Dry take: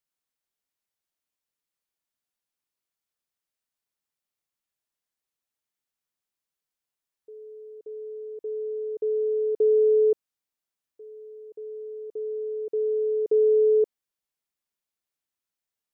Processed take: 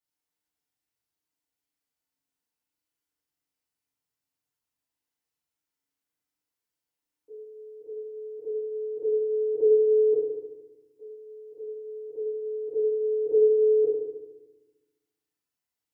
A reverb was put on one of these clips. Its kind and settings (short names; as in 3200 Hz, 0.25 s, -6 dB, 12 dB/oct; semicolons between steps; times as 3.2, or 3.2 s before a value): FDN reverb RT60 1.1 s, low-frequency decay 1.6×, high-frequency decay 0.75×, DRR -9 dB; gain -9 dB